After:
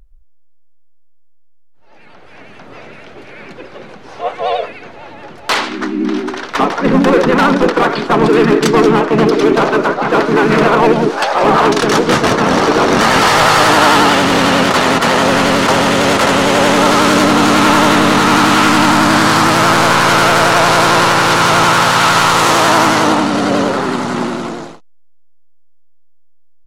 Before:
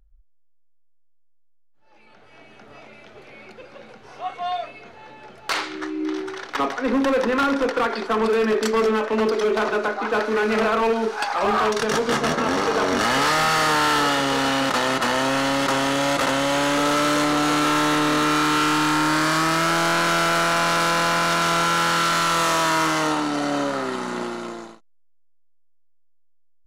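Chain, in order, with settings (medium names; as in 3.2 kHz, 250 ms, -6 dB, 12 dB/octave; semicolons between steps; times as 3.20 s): harmony voices -7 st -5 dB, -4 st -5 dB; vibrato 11 Hz 90 cents; trim +8 dB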